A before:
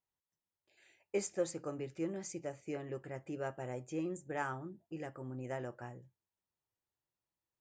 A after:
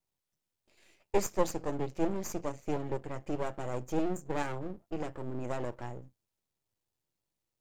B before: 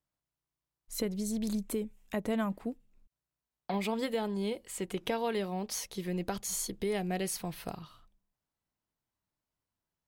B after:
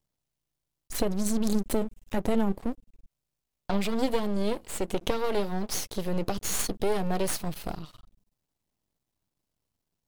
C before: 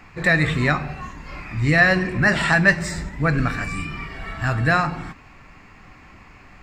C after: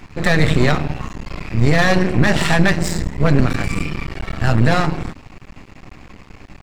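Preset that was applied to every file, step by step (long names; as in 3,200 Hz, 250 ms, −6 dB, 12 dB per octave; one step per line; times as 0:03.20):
parametric band 1,500 Hz −9.5 dB 1.8 octaves
half-wave rectification
high-shelf EQ 6,200 Hz −4 dB
boost into a limiter +13.5 dB
level −1 dB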